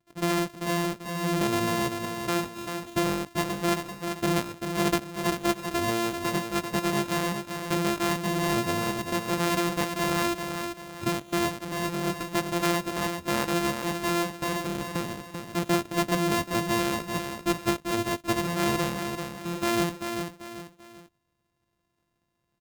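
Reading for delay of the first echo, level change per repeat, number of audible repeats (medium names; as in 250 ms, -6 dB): 390 ms, -8.5 dB, 3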